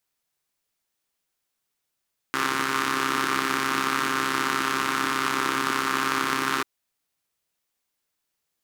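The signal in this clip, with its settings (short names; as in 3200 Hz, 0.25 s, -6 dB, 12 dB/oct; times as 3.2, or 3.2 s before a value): four-cylinder engine model, steady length 4.29 s, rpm 4000, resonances 320/1200 Hz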